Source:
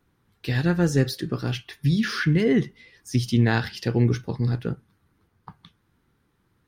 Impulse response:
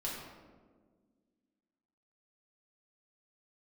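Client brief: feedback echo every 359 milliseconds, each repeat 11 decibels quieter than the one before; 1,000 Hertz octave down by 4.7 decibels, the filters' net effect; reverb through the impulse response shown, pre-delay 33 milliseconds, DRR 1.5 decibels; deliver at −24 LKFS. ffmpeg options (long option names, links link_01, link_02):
-filter_complex "[0:a]equalizer=frequency=1000:width_type=o:gain=-7,aecho=1:1:359|718|1077:0.282|0.0789|0.0221,asplit=2[link_01][link_02];[1:a]atrim=start_sample=2205,adelay=33[link_03];[link_02][link_03]afir=irnorm=-1:irlink=0,volume=-3.5dB[link_04];[link_01][link_04]amix=inputs=2:normalize=0,volume=-3dB"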